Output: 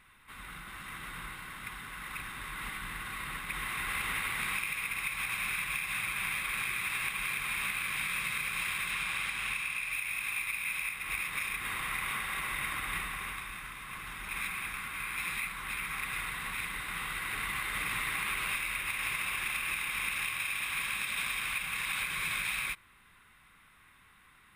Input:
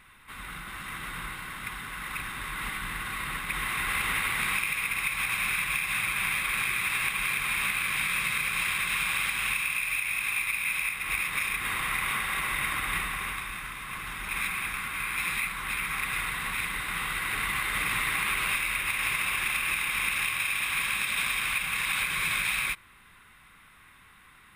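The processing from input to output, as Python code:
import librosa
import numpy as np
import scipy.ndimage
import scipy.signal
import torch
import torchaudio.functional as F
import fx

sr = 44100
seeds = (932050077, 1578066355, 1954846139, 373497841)

y = fx.high_shelf(x, sr, hz=12000.0, db=-9.0, at=(8.91, 9.93))
y = y * 10.0 ** (-5.5 / 20.0)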